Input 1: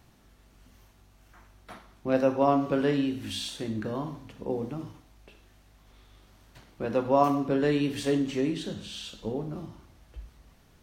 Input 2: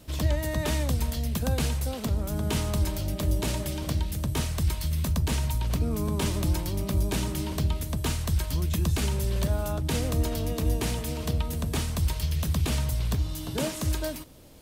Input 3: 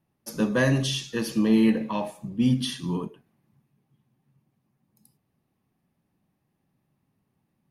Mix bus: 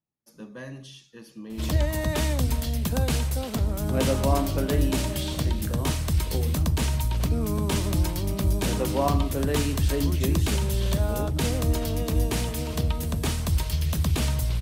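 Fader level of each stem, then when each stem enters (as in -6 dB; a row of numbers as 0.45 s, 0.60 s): -3.0 dB, +2.0 dB, -17.5 dB; 1.85 s, 1.50 s, 0.00 s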